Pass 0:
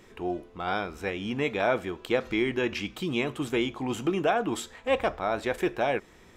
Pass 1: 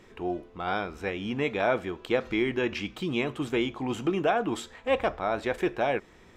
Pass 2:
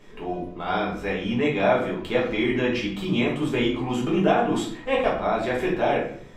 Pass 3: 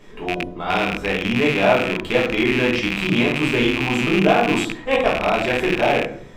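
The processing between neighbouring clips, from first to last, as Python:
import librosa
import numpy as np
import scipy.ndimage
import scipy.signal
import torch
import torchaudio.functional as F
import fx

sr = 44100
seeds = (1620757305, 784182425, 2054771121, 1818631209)

y1 = fx.high_shelf(x, sr, hz=8000.0, db=-9.5)
y2 = fx.room_shoebox(y1, sr, seeds[0], volume_m3=67.0, walls='mixed', distance_m=1.3)
y2 = y2 * librosa.db_to_amplitude(-1.5)
y3 = fx.rattle_buzz(y2, sr, strikes_db=-33.0, level_db=-15.0)
y3 = y3 * librosa.db_to_amplitude(4.0)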